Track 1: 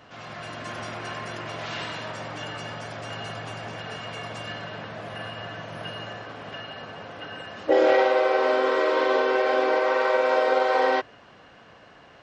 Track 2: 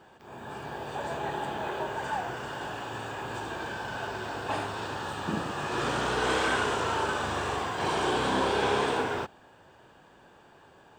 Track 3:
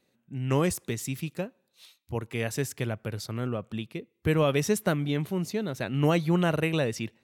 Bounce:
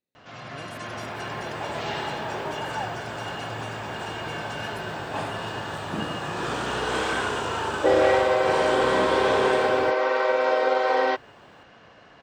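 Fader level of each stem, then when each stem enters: -0.5 dB, +0.5 dB, -19.5 dB; 0.15 s, 0.65 s, 0.00 s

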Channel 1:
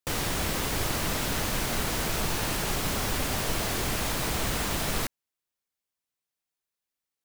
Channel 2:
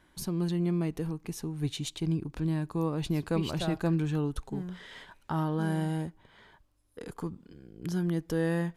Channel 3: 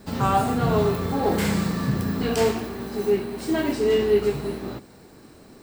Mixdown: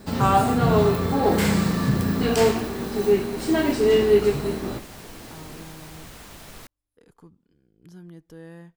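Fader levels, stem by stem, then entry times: -14.0 dB, -14.0 dB, +2.5 dB; 1.60 s, 0.00 s, 0.00 s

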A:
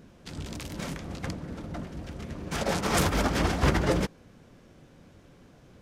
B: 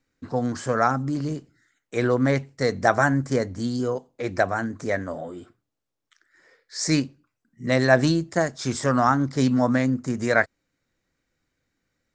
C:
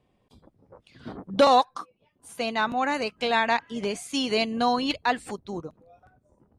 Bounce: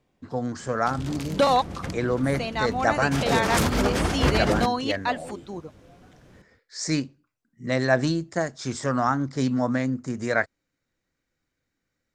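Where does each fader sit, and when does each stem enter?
+1.5 dB, -3.5 dB, -2.0 dB; 0.60 s, 0.00 s, 0.00 s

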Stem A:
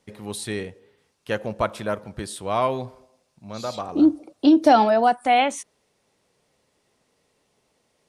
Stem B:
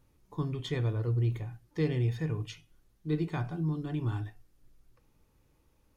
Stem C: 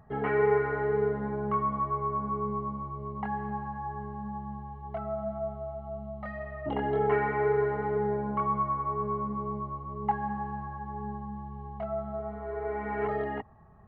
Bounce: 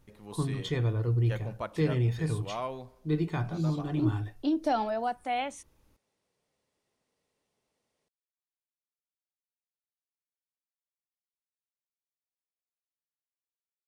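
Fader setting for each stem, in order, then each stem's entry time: -13.0 dB, +2.0 dB, mute; 0.00 s, 0.00 s, mute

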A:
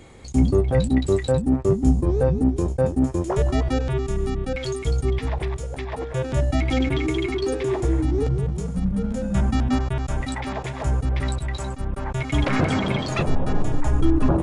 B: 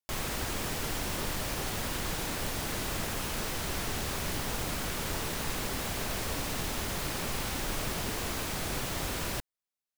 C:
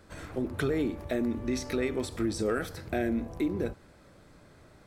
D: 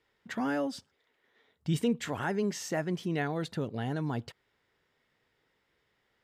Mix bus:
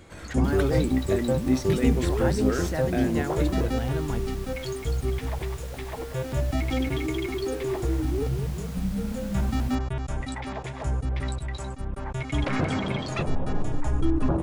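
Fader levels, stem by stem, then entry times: -5.0 dB, -11.5 dB, +0.5 dB, 0.0 dB; 0.00 s, 0.35 s, 0.00 s, 0.00 s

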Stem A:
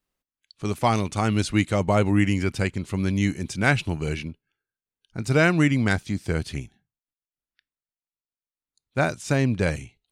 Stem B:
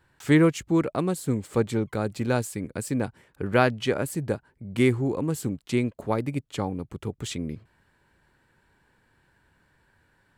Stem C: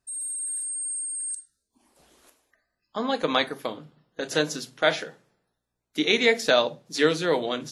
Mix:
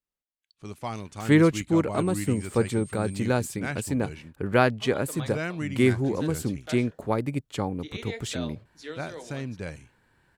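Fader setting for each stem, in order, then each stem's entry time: -12.5 dB, 0.0 dB, -18.0 dB; 0.00 s, 1.00 s, 1.85 s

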